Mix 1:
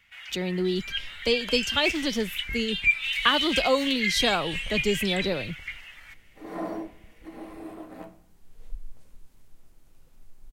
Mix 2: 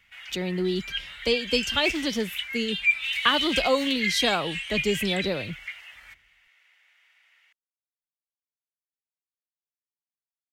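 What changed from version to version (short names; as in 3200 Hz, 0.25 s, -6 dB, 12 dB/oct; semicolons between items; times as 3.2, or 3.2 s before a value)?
second sound: muted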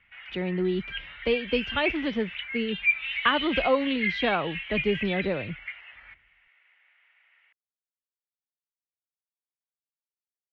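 master: add LPF 2700 Hz 24 dB/oct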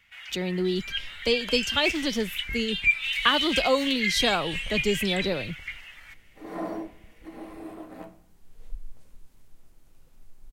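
second sound: unmuted; master: remove LPF 2700 Hz 24 dB/oct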